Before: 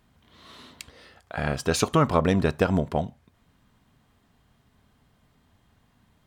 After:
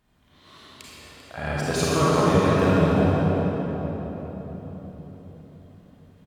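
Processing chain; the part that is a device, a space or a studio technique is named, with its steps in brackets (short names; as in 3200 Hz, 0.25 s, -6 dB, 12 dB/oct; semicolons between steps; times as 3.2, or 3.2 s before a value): cave (echo 0.393 s -13 dB; reverb RT60 4.4 s, pre-delay 31 ms, DRR -8.5 dB); gain -6 dB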